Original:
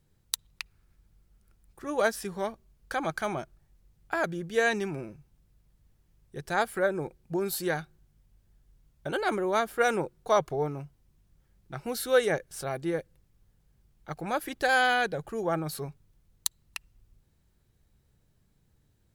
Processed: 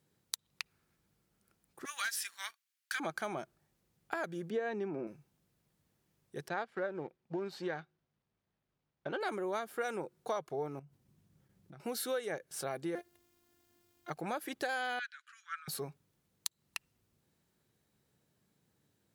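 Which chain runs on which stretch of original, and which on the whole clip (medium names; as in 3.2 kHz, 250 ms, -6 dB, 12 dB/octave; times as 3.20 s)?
1.85–3.00 s: inverse Chebyshev high-pass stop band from 270 Hz, stop band 80 dB + waveshaping leveller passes 2
4.50–5.07 s: band-pass 200–5100 Hz + tilt shelf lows +8 dB, about 1.5 kHz
6.48–9.21 s: companding laws mixed up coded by A + distance through air 180 m
10.79–11.80 s: peaking EQ 110 Hz +10.5 dB 2.7 oct + compression 12:1, threshold -45 dBFS + expander -59 dBFS
12.95–14.10 s: companding laws mixed up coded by mu + robot voice 351 Hz
14.99–15.68 s: steep high-pass 1.3 kHz 72 dB/octave + distance through air 100 m
whole clip: compression 6:1, threshold -32 dBFS; high-pass 180 Hz 12 dB/octave; trim -1.5 dB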